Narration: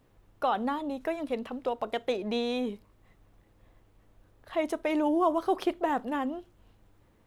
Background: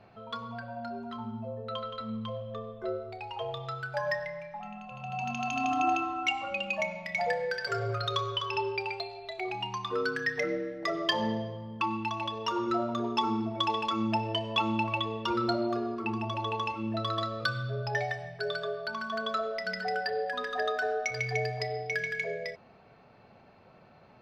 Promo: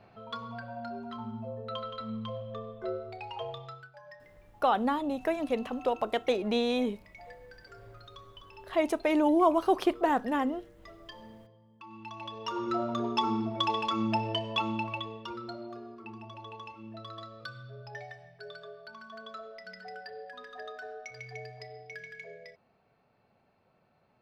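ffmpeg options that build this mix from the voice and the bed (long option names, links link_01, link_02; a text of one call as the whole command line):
ffmpeg -i stem1.wav -i stem2.wav -filter_complex "[0:a]adelay=4200,volume=2dB[link_01];[1:a]volume=19dB,afade=type=out:start_time=3.36:duration=0.57:silence=0.112202,afade=type=in:start_time=11.84:duration=1.12:silence=0.1,afade=type=out:start_time=14.25:duration=1.17:silence=0.237137[link_02];[link_01][link_02]amix=inputs=2:normalize=0" out.wav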